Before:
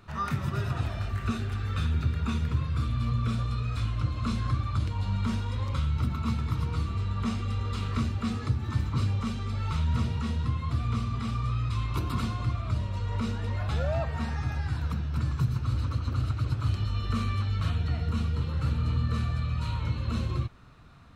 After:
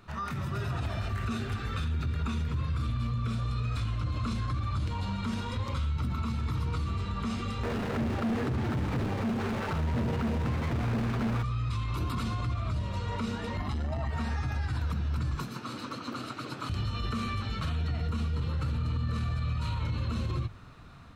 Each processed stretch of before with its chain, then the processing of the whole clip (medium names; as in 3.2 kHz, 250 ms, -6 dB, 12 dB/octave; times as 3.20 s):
7.63–11.43 s: median filter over 41 samples + overdrive pedal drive 30 dB, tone 3.2 kHz, clips at -15 dBFS
13.57–14.11 s: comb 1 ms, depth 71% + transformer saturation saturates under 160 Hz
15.35–16.70 s: high-pass 210 Hz 24 dB/octave + doubling 21 ms -14 dB
whole clip: hum notches 50/100/150 Hz; peak limiter -27.5 dBFS; level rider gain up to 3.5 dB